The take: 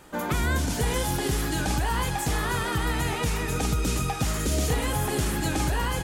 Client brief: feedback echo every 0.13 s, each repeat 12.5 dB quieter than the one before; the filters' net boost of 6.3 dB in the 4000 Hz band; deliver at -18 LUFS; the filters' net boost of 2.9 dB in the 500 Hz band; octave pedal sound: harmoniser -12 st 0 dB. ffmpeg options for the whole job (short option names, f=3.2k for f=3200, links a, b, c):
-filter_complex "[0:a]equalizer=f=500:t=o:g=3.5,equalizer=f=4k:t=o:g=8,aecho=1:1:130|260|390:0.237|0.0569|0.0137,asplit=2[a][b];[b]asetrate=22050,aresample=44100,atempo=2,volume=0dB[c];[a][c]amix=inputs=2:normalize=0,volume=4.5dB"